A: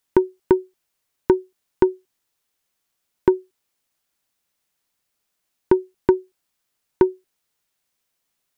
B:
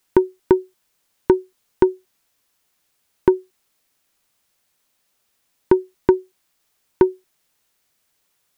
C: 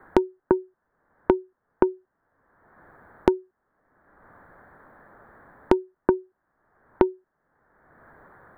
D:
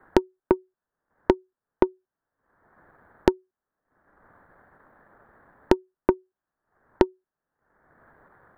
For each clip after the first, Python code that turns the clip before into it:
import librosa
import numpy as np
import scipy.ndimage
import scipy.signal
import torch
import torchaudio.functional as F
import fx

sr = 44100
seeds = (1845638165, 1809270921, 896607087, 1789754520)

y1 = fx.quant_dither(x, sr, seeds[0], bits=12, dither='triangular')
y1 = F.gain(torch.from_numpy(y1), 1.5).numpy()
y2 = scipy.signal.sosfilt(scipy.signal.ellip(4, 1.0, 40, 1700.0, 'lowpass', fs=sr, output='sos'), y1)
y2 = fx.band_squash(y2, sr, depth_pct=100)
y2 = F.gain(torch.from_numpy(y2), -2.0).numpy()
y3 = fx.tracing_dist(y2, sr, depth_ms=0.21)
y3 = fx.transient(y3, sr, attack_db=5, sustain_db=-9)
y3 = F.gain(torch.from_numpy(y3), -5.0).numpy()